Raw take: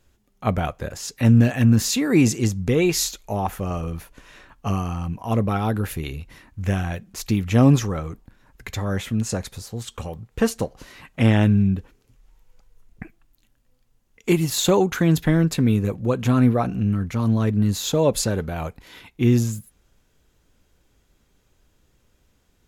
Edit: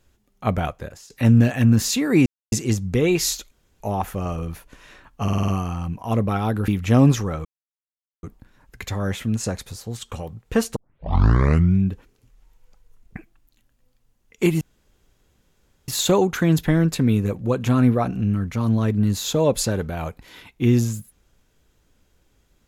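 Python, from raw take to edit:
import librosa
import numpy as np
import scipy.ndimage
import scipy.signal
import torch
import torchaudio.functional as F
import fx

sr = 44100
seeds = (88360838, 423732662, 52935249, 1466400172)

y = fx.edit(x, sr, fx.fade_out_to(start_s=0.68, length_s=0.42, floor_db=-21.0),
    fx.insert_silence(at_s=2.26, length_s=0.26),
    fx.insert_room_tone(at_s=3.25, length_s=0.29),
    fx.stutter(start_s=4.68, slice_s=0.05, count=6),
    fx.cut(start_s=5.88, length_s=1.44),
    fx.insert_silence(at_s=8.09, length_s=0.78),
    fx.tape_start(start_s=10.62, length_s=1.05),
    fx.insert_room_tone(at_s=14.47, length_s=1.27), tone=tone)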